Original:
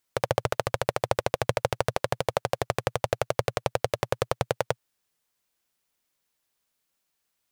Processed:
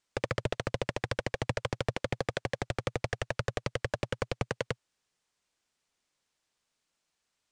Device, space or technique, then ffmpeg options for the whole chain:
synthesiser wavefolder: -af "aeval=exprs='0.112*(abs(mod(val(0)/0.112+3,4)-2)-1)':channel_layout=same,lowpass=frequency=8400:width=0.5412,lowpass=frequency=8400:width=1.3066"

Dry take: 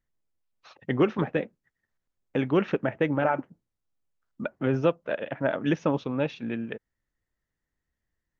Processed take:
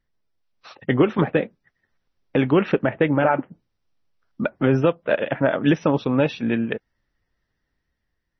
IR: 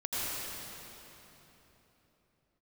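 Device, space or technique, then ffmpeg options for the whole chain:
low-bitrate web radio: -af "dynaudnorm=framelen=120:gausssize=11:maxgain=3.5dB,alimiter=limit=-13dB:level=0:latency=1:release=257,volume=6.5dB" -ar 24000 -c:a libmp3lame -b:a 24k

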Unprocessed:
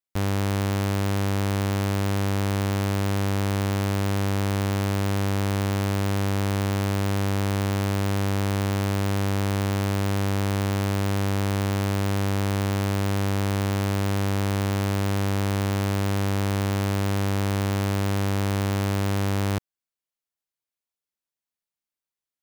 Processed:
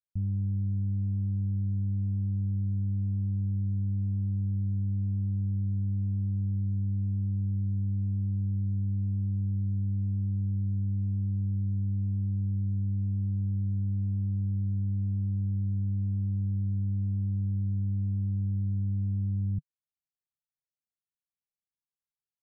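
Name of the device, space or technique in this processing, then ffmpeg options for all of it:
the neighbour's flat through the wall: -af "lowpass=frequency=180:width=0.5412,lowpass=frequency=180:width=1.3066,equalizer=frequency=150:width_type=o:width=0.83:gain=6.5,volume=-5dB"

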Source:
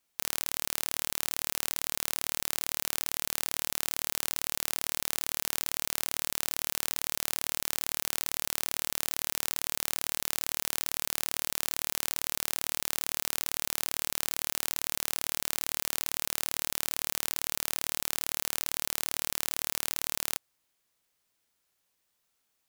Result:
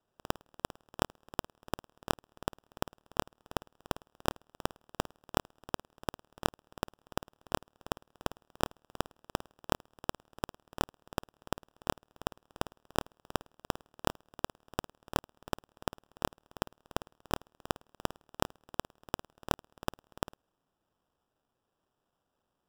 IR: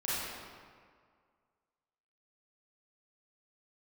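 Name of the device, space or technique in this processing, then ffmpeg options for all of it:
crushed at another speed: -af "asetrate=22050,aresample=44100,acrusher=samples=41:mix=1:aa=0.000001,asetrate=88200,aresample=44100,volume=-5.5dB"

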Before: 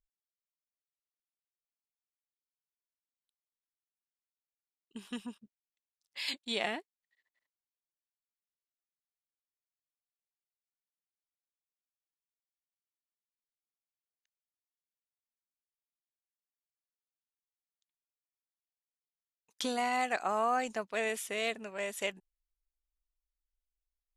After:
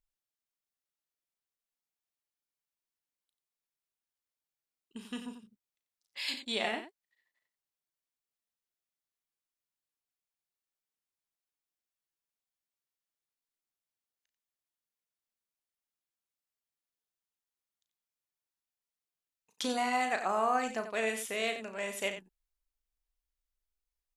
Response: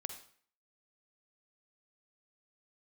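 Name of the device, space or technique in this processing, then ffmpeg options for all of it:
slapback doubling: -filter_complex "[0:a]asplit=3[link_01][link_02][link_03];[link_02]adelay=36,volume=-8.5dB[link_04];[link_03]adelay=90,volume=-10dB[link_05];[link_01][link_04][link_05]amix=inputs=3:normalize=0"

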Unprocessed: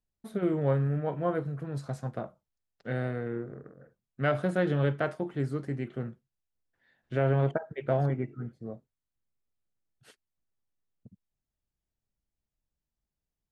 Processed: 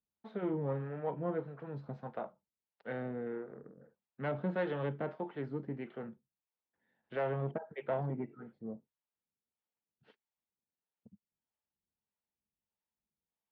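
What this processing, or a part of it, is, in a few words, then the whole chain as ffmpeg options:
guitar amplifier with harmonic tremolo: -filter_complex "[0:a]acrossover=split=430[link_01][link_02];[link_01]aeval=exprs='val(0)*(1-0.7/2+0.7/2*cos(2*PI*1.6*n/s))':channel_layout=same[link_03];[link_02]aeval=exprs='val(0)*(1-0.7/2-0.7/2*cos(2*PI*1.6*n/s))':channel_layout=same[link_04];[link_03][link_04]amix=inputs=2:normalize=0,asoftclip=type=tanh:threshold=-24.5dB,highpass=97,equalizer=frequency=120:width_type=q:width=4:gain=-8,equalizer=frequency=210:width_type=q:width=4:gain=5,equalizer=frequency=470:width_type=q:width=4:gain=4,equalizer=frequency=890:width_type=q:width=4:gain=8,lowpass=frequency=3600:width=0.5412,lowpass=frequency=3600:width=1.3066,volume=-3dB"

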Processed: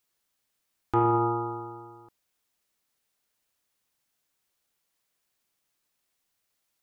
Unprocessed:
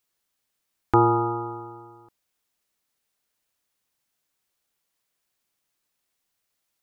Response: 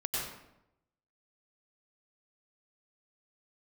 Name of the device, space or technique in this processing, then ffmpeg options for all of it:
soft clipper into limiter: -af "asoftclip=type=tanh:threshold=-6dB,alimiter=limit=-15dB:level=0:latency=1"

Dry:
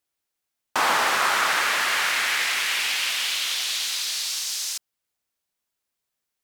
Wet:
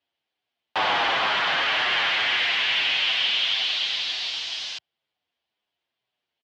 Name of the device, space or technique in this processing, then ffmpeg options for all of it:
barber-pole flanger into a guitar amplifier: -filter_complex "[0:a]asplit=2[link_01][link_02];[link_02]adelay=7.9,afreqshift=-2.1[link_03];[link_01][link_03]amix=inputs=2:normalize=1,asoftclip=type=tanh:threshold=-26dB,highpass=91,equalizer=frequency=210:width_type=q:width=4:gain=-3,equalizer=frequency=720:width_type=q:width=4:gain=5,equalizer=frequency=1300:width_type=q:width=4:gain=-4,equalizer=frequency=3100:width_type=q:width=4:gain=7,lowpass=frequency=4100:width=0.5412,lowpass=frequency=4100:width=1.3066,volume=6.5dB"

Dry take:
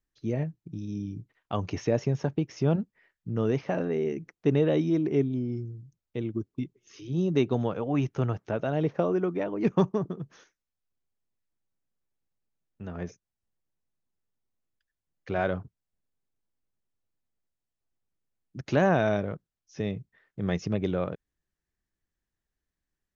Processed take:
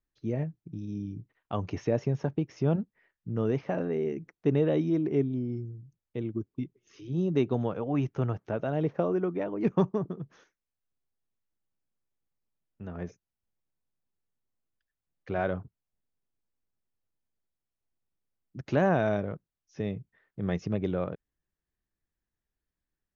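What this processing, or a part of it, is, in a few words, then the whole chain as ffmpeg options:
behind a face mask: -af "highshelf=frequency=3200:gain=-8,volume=-1.5dB"

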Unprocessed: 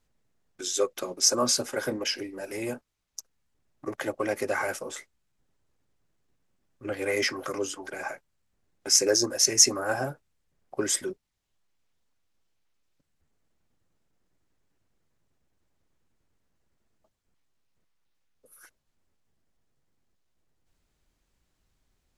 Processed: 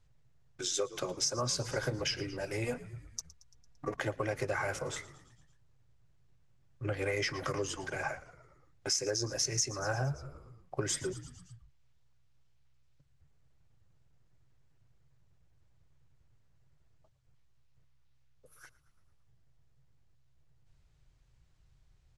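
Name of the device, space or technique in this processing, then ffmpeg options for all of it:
jukebox: -filter_complex "[0:a]asettb=1/sr,asplit=3[link_01][link_02][link_03];[link_01]atrim=end=2.644[link_04];[link_02]atrim=start=2.64:end=3.97,asetpts=PTS-STARTPTS,afade=type=in:duration=0.004:curve=qsin,afade=type=out:start_time=1.326:duration=0.004:curve=qsin,aecho=1:1:4.2:0.76,atrim=end_sample=58653[link_05];[link_03]atrim=start=3.966[link_06];[link_04][link_05]acrossfade=duration=0.004:curve1=hsin:curve2=qsin[link_07];[link_07][link_06]acrossfade=duration=0.004:curve1=qsin:curve2=hsin,asplit=6[link_08][link_09][link_10][link_11][link_12][link_13];[link_09]adelay=113,afreqshift=-64,volume=-19dB[link_14];[link_10]adelay=226,afreqshift=-128,volume=-23.3dB[link_15];[link_11]adelay=339,afreqshift=-192,volume=-27.6dB[link_16];[link_12]adelay=452,afreqshift=-256,volume=-31.9dB[link_17];[link_13]adelay=565,afreqshift=-320,volume=-36.2dB[link_18];[link_08][link_14][link_15][link_16][link_17][link_18]amix=inputs=6:normalize=0,lowpass=7400,lowshelf=frequency=170:width_type=q:width=3:gain=7.5,acompressor=threshold=-30dB:ratio=5"

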